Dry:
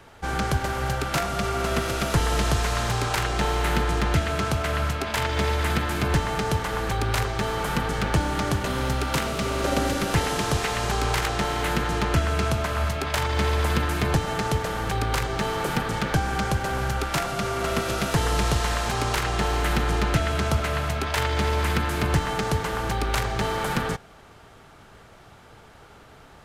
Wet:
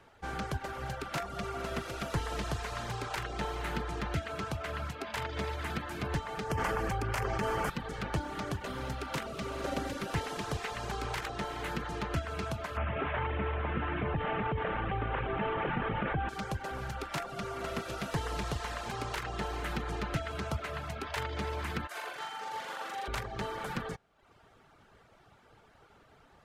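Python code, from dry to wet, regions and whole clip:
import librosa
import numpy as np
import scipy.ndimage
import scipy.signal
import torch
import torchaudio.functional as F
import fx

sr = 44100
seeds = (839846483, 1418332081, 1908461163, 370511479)

y = fx.chain(x, sr, fx.peak_eq(hz=3800.0, db=-12.5, octaves=0.34),
    fx.env_flatten(amount_pct=100), at=(6.5, 7.7))
y = fx.chain(y, sr, fx.cvsd(bps=16000),
    fx.env_flatten(amount_pct=70), at=(12.77, 16.29))
y = fx.chain(y, sr, fx.highpass(hz=560.0, slope=12),
    fx.over_compress(threshold_db=-32.0, ratio=-0.5),
    fx.room_flutter(wall_m=7.2, rt60_s=1.3), at=(21.87, 23.08))
y = fx.low_shelf(y, sr, hz=160.0, db=-3.5)
y = fx.dereverb_blind(y, sr, rt60_s=0.73)
y = fx.high_shelf(y, sr, hz=5000.0, db=-7.0)
y = F.gain(torch.from_numpy(y), -8.5).numpy()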